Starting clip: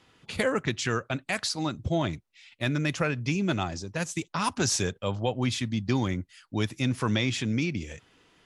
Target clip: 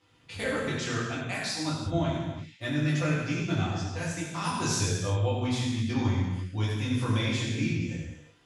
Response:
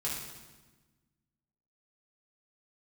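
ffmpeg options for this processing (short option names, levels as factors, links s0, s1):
-filter_complex "[1:a]atrim=start_sample=2205,afade=t=out:st=0.32:d=0.01,atrim=end_sample=14553,asetrate=31311,aresample=44100[s0];[0:a][s0]afir=irnorm=-1:irlink=0,volume=0.376"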